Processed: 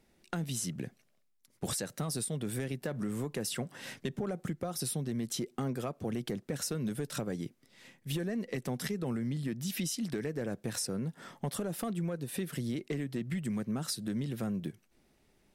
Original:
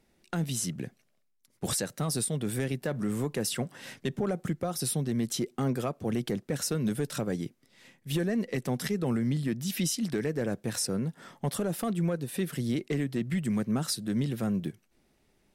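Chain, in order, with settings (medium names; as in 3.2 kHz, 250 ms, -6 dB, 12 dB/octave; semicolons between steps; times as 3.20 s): compression 3:1, threshold -33 dBFS, peak gain reduction 6.5 dB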